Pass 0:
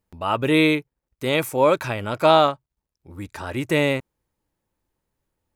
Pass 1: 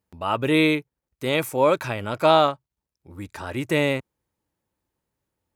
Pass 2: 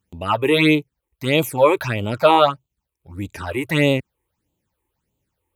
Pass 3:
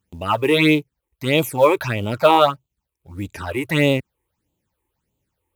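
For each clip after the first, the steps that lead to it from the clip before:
high-pass filter 56 Hz; level −1.5 dB
all-pass phaser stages 8, 1.6 Hz, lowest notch 180–1,700 Hz; level +7 dB
floating-point word with a short mantissa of 4 bits

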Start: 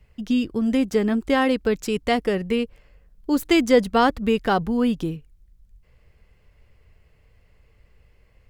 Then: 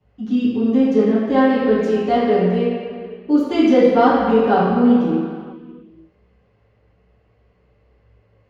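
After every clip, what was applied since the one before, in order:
convolution reverb RT60 2.2 s, pre-delay 3 ms, DRR −12.5 dB
level −18 dB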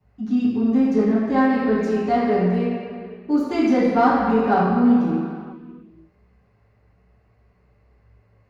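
thirty-one-band graphic EQ 315 Hz −4 dB, 500 Hz −9 dB, 3,150 Hz −11 dB
in parallel at −11 dB: soft clipping −20 dBFS, distortion −9 dB
on the sum: level −2 dB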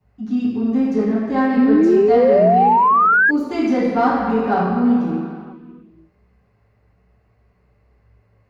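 sound drawn into the spectrogram rise, 0:01.57–0:03.31, 240–1,700 Hz −13 dBFS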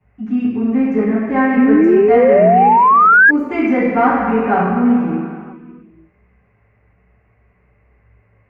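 high shelf with overshoot 3,100 Hz −10.5 dB, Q 3
level +2.5 dB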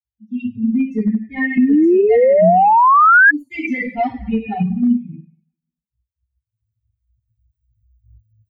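spectral dynamics exaggerated over time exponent 3
camcorder AGC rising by 11 dB per second
level +2 dB

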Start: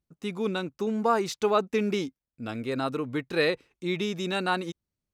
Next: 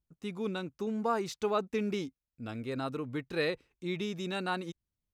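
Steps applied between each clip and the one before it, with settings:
low-shelf EQ 93 Hz +11 dB
level −7 dB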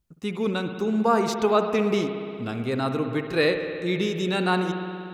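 spring reverb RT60 2.6 s, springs 60 ms, chirp 55 ms, DRR 6 dB
level +9 dB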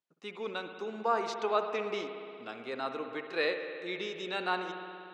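band-pass filter 480–4,900 Hz
level −6.5 dB

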